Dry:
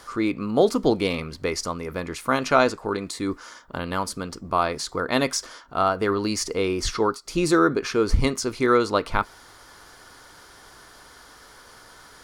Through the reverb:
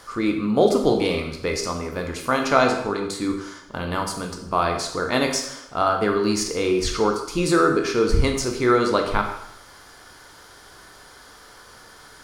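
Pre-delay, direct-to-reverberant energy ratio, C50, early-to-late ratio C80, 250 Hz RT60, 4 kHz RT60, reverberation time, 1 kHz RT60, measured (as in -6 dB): 6 ms, 3.0 dB, 6.5 dB, 9.0 dB, 0.90 s, 0.75 s, 0.80 s, 0.80 s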